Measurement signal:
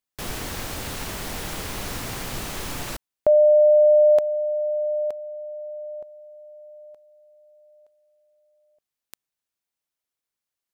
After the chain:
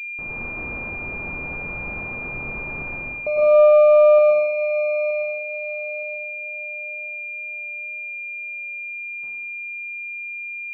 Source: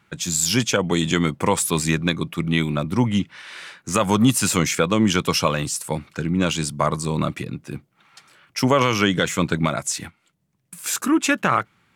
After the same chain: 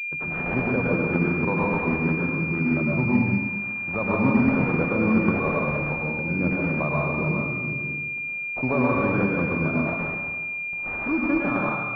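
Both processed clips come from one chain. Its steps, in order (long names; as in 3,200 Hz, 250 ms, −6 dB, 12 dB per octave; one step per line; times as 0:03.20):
loose part that buzzes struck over −32 dBFS, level −25 dBFS
dense smooth reverb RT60 1.4 s, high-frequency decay 1×, pre-delay 90 ms, DRR −4 dB
switching amplifier with a slow clock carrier 2,400 Hz
level −7.5 dB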